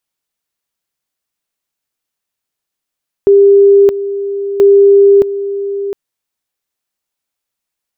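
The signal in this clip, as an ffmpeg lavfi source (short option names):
-f lavfi -i "aevalsrc='pow(10,(-2.5-12.5*gte(mod(t,1.33),0.62))/20)*sin(2*PI*399*t)':d=2.66:s=44100"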